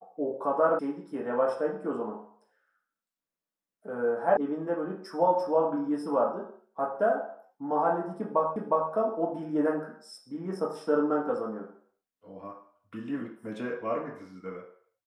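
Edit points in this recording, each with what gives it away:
0.79 s: sound stops dead
4.37 s: sound stops dead
8.56 s: repeat of the last 0.36 s

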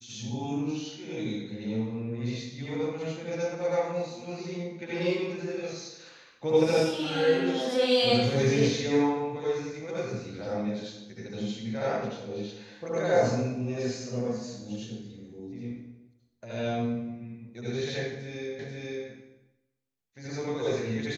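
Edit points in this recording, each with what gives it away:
18.59 s: repeat of the last 0.49 s

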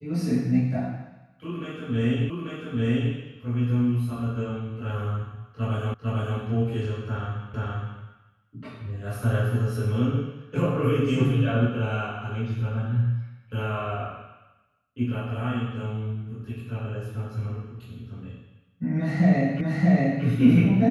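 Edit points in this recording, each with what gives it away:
2.30 s: repeat of the last 0.84 s
5.94 s: repeat of the last 0.45 s
7.54 s: repeat of the last 0.47 s
19.61 s: repeat of the last 0.63 s

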